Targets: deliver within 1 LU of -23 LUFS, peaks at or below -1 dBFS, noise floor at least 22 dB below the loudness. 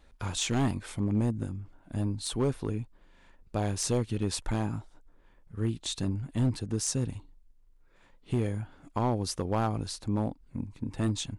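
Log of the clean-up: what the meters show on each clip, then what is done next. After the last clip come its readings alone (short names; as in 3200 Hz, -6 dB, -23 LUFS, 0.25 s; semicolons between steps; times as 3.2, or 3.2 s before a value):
clipped 0.9%; flat tops at -20.5 dBFS; loudness -32.0 LUFS; peak -20.5 dBFS; loudness target -23.0 LUFS
-> clip repair -20.5 dBFS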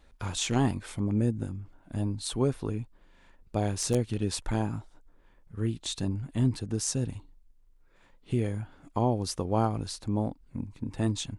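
clipped 0.0%; loudness -31.0 LUFS; peak -12.0 dBFS; loudness target -23.0 LUFS
-> gain +8 dB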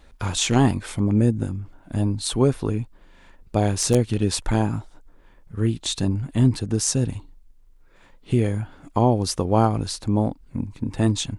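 loudness -23.0 LUFS; peak -4.0 dBFS; noise floor -52 dBFS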